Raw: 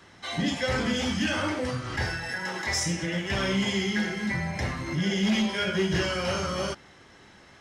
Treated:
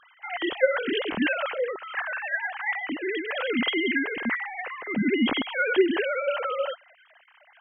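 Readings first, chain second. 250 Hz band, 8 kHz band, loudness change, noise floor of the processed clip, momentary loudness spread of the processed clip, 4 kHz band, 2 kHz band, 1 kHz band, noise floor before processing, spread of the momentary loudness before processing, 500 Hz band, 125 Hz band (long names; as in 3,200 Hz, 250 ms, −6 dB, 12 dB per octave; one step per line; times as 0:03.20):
−0.5 dB, below −40 dB, +1.0 dB, −58 dBFS, 7 LU, −2.5 dB, +3.5 dB, +1.5 dB, −53 dBFS, 5 LU, +5.0 dB, −15.0 dB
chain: three sine waves on the formant tracks
level +1 dB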